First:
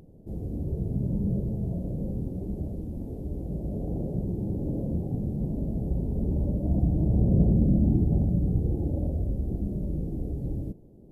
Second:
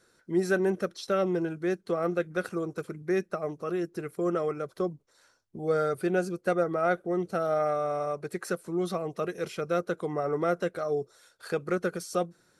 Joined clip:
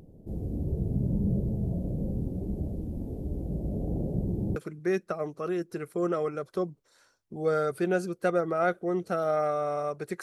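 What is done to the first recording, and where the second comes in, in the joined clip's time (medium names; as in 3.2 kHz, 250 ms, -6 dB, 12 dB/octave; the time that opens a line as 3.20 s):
first
4.56 s: go over to second from 2.79 s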